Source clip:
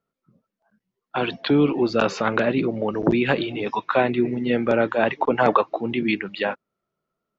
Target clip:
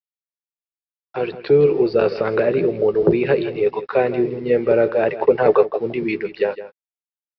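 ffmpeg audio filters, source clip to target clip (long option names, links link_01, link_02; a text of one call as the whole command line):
ffmpeg -i in.wav -filter_complex "[0:a]equalizer=frequency=3300:width_type=o:width=0.37:gain=-14,asplit=2[link_01][link_02];[link_02]adelay=12,volume=-10dB[link_03];[link_01][link_03]amix=inputs=2:normalize=0,dynaudnorm=framelen=600:gausssize=5:maxgain=11.5dB,firequalizer=gain_entry='entry(160,0);entry(260,-11);entry(410,9);entry(660,-3);entry(1000,-8);entry(2400,-2)':delay=0.05:min_phase=1,aresample=11025,aeval=exprs='sgn(val(0))*max(abs(val(0))-0.00473,0)':channel_layout=same,aresample=44100,aecho=1:1:163:0.2,volume=-1dB" out.wav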